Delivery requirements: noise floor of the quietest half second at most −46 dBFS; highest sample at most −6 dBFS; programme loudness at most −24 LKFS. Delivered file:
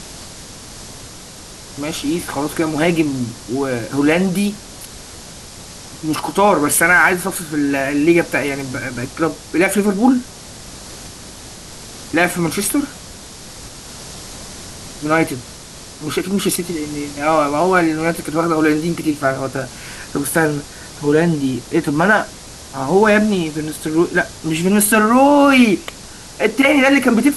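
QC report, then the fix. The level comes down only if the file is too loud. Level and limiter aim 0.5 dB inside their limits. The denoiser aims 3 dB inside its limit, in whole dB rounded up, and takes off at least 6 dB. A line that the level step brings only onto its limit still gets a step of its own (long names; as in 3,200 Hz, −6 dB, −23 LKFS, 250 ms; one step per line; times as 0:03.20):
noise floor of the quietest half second −36 dBFS: out of spec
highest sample −2.0 dBFS: out of spec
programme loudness −16.5 LKFS: out of spec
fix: broadband denoise 6 dB, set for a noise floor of −36 dBFS
level −8 dB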